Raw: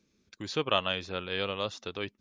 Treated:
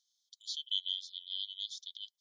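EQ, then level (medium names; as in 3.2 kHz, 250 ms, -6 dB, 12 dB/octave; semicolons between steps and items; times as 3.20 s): brick-wall FIR high-pass 3 kHz; 0.0 dB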